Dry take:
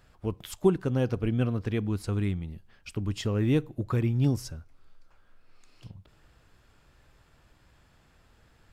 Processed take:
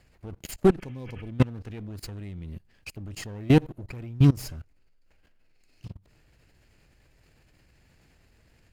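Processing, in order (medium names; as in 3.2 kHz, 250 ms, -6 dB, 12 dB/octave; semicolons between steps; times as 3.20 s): comb filter that takes the minimum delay 0.43 ms; spectral replace 0.83–1.26 s, 1.1–3.3 kHz after; level held to a coarse grid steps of 23 dB; trim +8.5 dB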